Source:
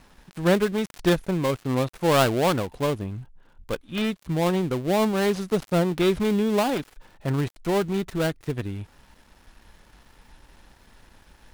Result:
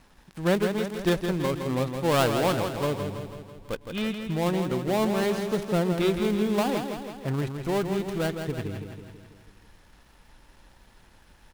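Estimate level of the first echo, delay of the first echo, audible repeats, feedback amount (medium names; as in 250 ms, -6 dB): -7.0 dB, 164 ms, 6, 58%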